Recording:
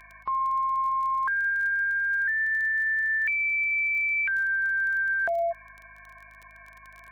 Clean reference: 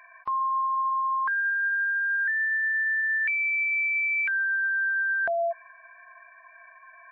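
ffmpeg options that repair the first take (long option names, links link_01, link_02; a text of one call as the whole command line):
ffmpeg -i in.wav -af "adeclick=threshold=4,bandreject=frequency=52.2:width_type=h:width=4,bandreject=frequency=104.4:width_type=h:width=4,bandreject=frequency=156.6:width_type=h:width=4,bandreject=frequency=208.8:width_type=h:width=4,bandreject=frequency=261:width_type=h:width=4,bandreject=frequency=2200:width=30" out.wav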